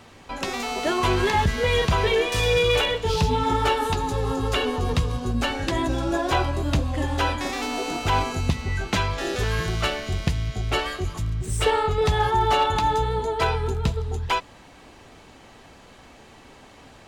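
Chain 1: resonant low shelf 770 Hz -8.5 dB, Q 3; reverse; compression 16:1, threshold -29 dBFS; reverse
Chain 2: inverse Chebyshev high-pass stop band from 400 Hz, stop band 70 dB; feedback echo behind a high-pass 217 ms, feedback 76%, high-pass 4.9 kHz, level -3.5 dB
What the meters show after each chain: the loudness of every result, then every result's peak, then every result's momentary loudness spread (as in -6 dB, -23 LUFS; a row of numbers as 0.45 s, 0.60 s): -33.0 LUFS, -30.0 LUFS; -20.0 dBFS, -13.5 dBFS; 17 LU, 12 LU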